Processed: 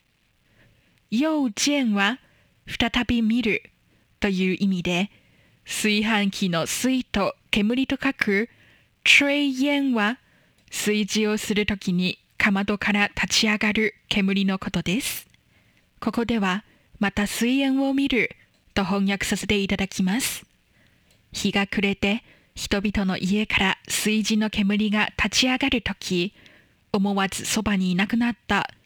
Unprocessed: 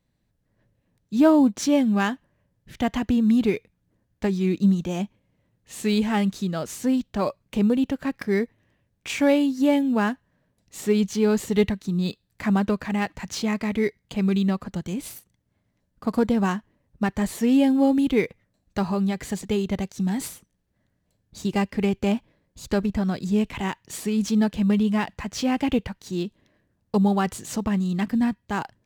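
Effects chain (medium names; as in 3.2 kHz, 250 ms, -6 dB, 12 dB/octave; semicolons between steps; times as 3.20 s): in parallel at +2.5 dB: peak limiter -15 dBFS, peak gain reduction 8.5 dB; on the sum: level rider gain up to 7 dB; bit crusher 11-bit; compression 5:1, threshold -16 dBFS, peak gain reduction 10 dB; peaking EQ 2.6 kHz +14 dB 1.3 oct; trim -4.5 dB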